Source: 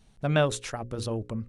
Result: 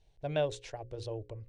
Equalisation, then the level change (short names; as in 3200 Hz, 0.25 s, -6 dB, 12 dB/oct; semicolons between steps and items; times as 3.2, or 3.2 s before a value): air absorption 100 m; bell 1300 Hz +10.5 dB 0.34 oct; fixed phaser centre 530 Hz, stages 4; -5.0 dB